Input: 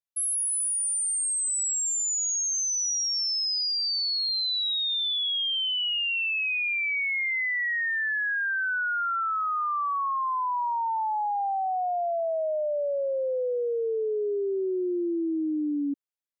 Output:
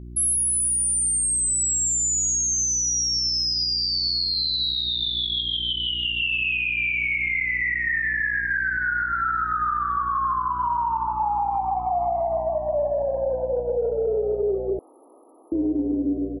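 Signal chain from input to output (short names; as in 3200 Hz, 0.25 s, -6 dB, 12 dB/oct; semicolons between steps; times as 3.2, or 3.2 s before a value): spring tank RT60 1.3 s, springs 31/39 ms, chirp 50 ms, DRR -9 dB; 4.55–6.2 dynamic EQ 4000 Hz, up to +6 dB, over -31 dBFS, Q 1.2; negative-ratio compressor -20 dBFS, ratio -0.5; high shelf 9000 Hz +5.5 dB; frequency-shifting echo 0.153 s, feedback 45%, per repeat +98 Hz, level -14 dB; buzz 60 Hz, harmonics 6, -38 dBFS -6 dB/oct; limiter -17 dBFS, peak gain reduction 8.5 dB; 14.79–15.52 room tone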